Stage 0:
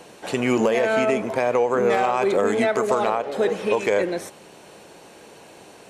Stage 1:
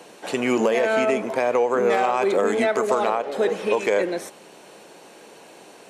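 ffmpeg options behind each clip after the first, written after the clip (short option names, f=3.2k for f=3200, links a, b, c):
-af "highpass=190"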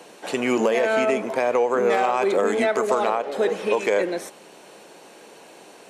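-af "lowshelf=f=69:g=-10"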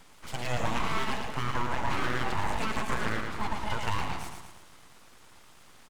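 -af "aecho=1:1:112|224|336|448|560|672|784:0.596|0.322|0.174|0.0938|0.0506|0.0274|0.0148,aeval=exprs='abs(val(0))':c=same,volume=-8dB"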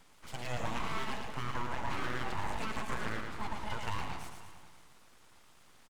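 -af "aecho=1:1:537:0.106,volume=-6.5dB"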